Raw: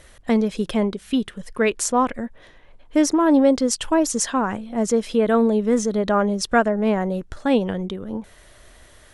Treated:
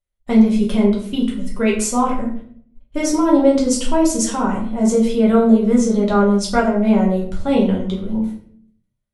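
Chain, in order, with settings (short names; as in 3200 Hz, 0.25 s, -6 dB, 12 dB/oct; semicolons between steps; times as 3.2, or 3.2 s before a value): low shelf 180 Hz +3.5 dB; gate -38 dBFS, range -42 dB; high shelf 9600 Hz +4.5 dB; notch 1700 Hz, Q 5.9; reverb RT60 0.60 s, pre-delay 5 ms, DRR -4 dB; gain -4 dB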